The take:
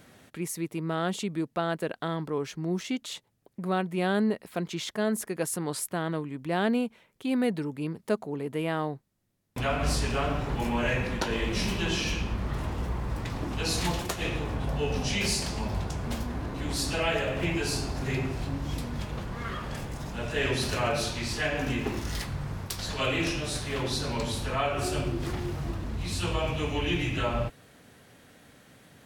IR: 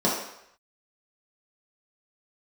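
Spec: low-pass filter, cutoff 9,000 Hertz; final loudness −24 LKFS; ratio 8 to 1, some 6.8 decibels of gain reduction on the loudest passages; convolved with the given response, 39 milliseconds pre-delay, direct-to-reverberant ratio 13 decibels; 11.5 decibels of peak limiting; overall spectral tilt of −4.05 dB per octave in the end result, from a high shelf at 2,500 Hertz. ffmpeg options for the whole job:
-filter_complex "[0:a]lowpass=9000,highshelf=frequency=2500:gain=8,acompressor=threshold=-28dB:ratio=8,alimiter=limit=-23.5dB:level=0:latency=1,asplit=2[link_01][link_02];[1:a]atrim=start_sample=2205,adelay=39[link_03];[link_02][link_03]afir=irnorm=-1:irlink=0,volume=-28dB[link_04];[link_01][link_04]amix=inputs=2:normalize=0,volume=9.5dB"

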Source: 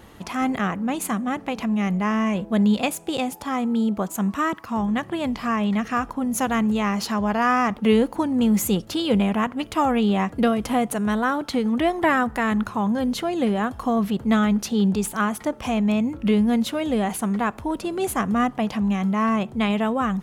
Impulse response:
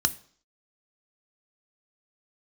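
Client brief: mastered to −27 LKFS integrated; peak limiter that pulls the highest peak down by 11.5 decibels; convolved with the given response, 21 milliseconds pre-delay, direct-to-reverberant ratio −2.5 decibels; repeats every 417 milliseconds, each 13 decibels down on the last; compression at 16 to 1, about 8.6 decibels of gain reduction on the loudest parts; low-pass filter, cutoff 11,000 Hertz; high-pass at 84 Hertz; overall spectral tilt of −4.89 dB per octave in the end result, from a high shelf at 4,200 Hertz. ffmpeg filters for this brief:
-filter_complex "[0:a]highpass=84,lowpass=11000,highshelf=frequency=4200:gain=3,acompressor=threshold=-23dB:ratio=16,alimiter=level_in=1.5dB:limit=-24dB:level=0:latency=1,volume=-1.5dB,aecho=1:1:417|834|1251:0.224|0.0493|0.0108,asplit=2[link_01][link_02];[1:a]atrim=start_sample=2205,adelay=21[link_03];[link_02][link_03]afir=irnorm=-1:irlink=0,volume=-6.5dB[link_04];[link_01][link_04]amix=inputs=2:normalize=0,volume=0.5dB"

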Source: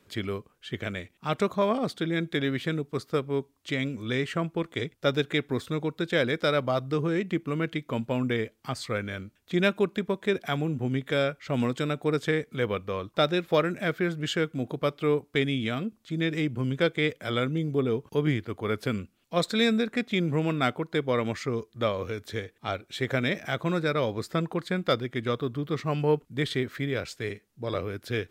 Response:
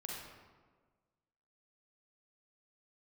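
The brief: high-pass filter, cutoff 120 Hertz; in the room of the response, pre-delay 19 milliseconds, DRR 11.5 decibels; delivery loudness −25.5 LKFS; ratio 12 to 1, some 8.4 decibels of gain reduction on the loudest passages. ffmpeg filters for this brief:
-filter_complex "[0:a]highpass=120,acompressor=threshold=-27dB:ratio=12,asplit=2[link_01][link_02];[1:a]atrim=start_sample=2205,adelay=19[link_03];[link_02][link_03]afir=irnorm=-1:irlink=0,volume=-10.5dB[link_04];[link_01][link_04]amix=inputs=2:normalize=0,volume=8dB"

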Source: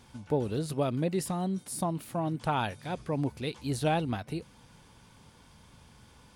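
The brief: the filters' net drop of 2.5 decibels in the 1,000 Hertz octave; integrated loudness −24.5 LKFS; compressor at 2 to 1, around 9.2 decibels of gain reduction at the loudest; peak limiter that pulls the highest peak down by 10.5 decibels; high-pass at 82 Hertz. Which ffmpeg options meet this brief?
ffmpeg -i in.wav -af "highpass=82,equalizer=frequency=1000:width_type=o:gain=-3.5,acompressor=threshold=-41dB:ratio=2,volume=20.5dB,alimiter=limit=-15dB:level=0:latency=1" out.wav

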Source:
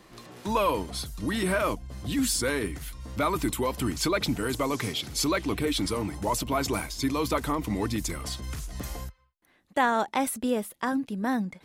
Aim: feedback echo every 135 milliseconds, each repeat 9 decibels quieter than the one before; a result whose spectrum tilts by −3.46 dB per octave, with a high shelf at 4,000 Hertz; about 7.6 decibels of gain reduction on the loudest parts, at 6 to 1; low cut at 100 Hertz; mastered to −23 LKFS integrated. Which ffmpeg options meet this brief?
ffmpeg -i in.wav -af "highpass=100,highshelf=frequency=4000:gain=8.5,acompressor=threshold=-26dB:ratio=6,aecho=1:1:135|270|405|540:0.355|0.124|0.0435|0.0152,volume=7dB" out.wav

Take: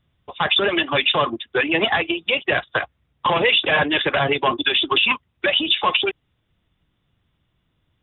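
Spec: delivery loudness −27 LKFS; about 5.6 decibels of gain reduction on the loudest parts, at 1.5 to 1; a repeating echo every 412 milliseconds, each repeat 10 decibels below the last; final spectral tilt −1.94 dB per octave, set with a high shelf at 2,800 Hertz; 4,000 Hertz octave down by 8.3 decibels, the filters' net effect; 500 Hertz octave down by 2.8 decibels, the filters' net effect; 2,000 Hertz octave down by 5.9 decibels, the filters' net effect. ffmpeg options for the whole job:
ffmpeg -i in.wav -af "equalizer=frequency=500:width_type=o:gain=-3,equalizer=frequency=2000:width_type=o:gain=-3,highshelf=frequency=2800:gain=-7,equalizer=frequency=4000:width_type=o:gain=-4.5,acompressor=threshold=-33dB:ratio=1.5,aecho=1:1:412|824|1236|1648:0.316|0.101|0.0324|0.0104,volume=1.5dB" out.wav

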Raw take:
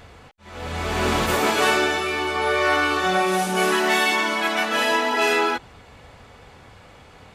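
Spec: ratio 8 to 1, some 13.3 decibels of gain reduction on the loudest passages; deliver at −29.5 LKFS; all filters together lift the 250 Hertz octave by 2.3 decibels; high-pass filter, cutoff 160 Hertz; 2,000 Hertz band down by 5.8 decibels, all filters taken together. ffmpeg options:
ffmpeg -i in.wav -af "highpass=160,equalizer=frequency=250:width_type=o:gain=4.5,equalizer=frequency=2000:width_type=o:gain=-8,acompressor=threshold=-31dB:ratio=8,volume=4.5dB" out.wav

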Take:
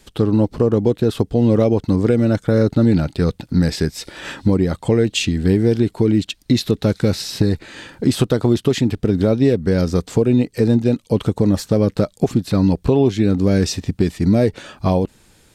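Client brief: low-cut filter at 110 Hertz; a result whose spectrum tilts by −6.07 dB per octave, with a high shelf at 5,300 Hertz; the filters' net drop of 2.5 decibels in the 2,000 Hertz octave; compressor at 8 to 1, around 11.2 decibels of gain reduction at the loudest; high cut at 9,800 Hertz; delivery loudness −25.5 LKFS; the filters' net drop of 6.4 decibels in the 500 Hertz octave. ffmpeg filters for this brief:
ffmpeg -i in.wav -af "highpass=110,lowpass=9800,equalizer=frequency=500:width_type=o:gain=-8,equalizer=frequency=2000:width_type=o:gain=-3.5,highshelf=frequency=5300:gain=3,acompressor=threshold=-24dB:ratio=8,volume=4.5dB" out.wav

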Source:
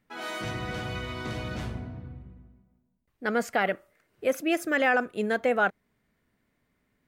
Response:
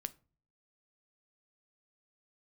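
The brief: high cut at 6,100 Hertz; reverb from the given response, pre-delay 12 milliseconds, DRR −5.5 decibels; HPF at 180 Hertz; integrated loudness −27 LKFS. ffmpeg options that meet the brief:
-filter_complex "[0:a]highpass=180,lowpass=6100,asplit=2[link_01][link_02];[1:a]atrim=start_sample=2205,adelay=12[link_03];[link_02][link_03]afir=irnorm=-1:irlink=0,volume=7.5dB[link_04];[link_01][link_04]amix=inputs=2:normalize=0,volume=-5dB"

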